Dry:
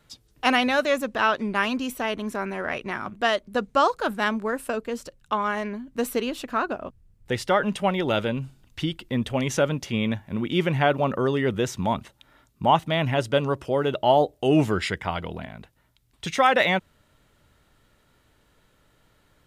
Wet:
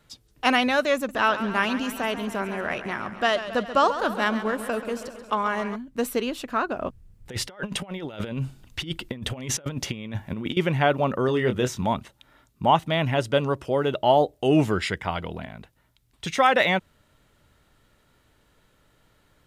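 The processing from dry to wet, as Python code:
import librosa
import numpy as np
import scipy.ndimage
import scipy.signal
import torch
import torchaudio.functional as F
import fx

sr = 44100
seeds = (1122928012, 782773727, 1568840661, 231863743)

y = fx.echo_warbled(x, sr, ms=136, feedback_pct=66, rate_hz=2.8, cents=90, wet_db=-12.0, at=(0.95, 5.76))
y = fx.over_compress(y, sr, threshold_db=-30.0, ratio=-0.5, at=(6.76, 10.57))
y = fx.doubler(y, sr, ms=24.0, db=-7, at=(11.26, 11.84))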